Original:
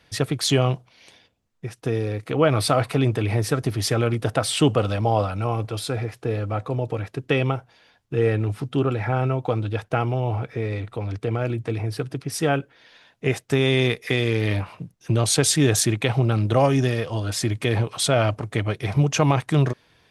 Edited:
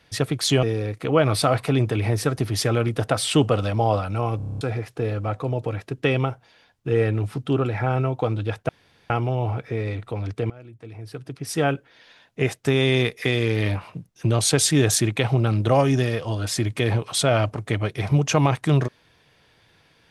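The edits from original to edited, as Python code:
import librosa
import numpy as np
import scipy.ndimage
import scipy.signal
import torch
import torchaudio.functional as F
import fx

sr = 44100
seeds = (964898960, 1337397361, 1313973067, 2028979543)

y = fx.edit(x, sr, fx.cut(start_s=0.63, length_s=1.26),
    fx.stutter_over(start_s=5.63, slice_s=0.03, count=8),
    fx.insert_room_tone(at_s=9.95, length_s=0.41),
    fx.fade_in_from(start_s=11.35, length_s=1.13, curve='qua', floor_db=-19.5), tone=tone)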